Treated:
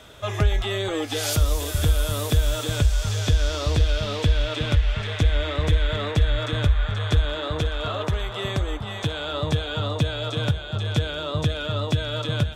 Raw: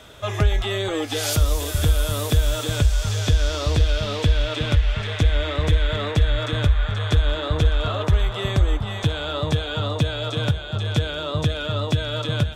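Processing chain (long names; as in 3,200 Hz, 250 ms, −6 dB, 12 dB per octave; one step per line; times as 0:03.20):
0:07.25–0:09.33: low-shelf EQ 97 Hz −9.5 dB
level −1.5 dB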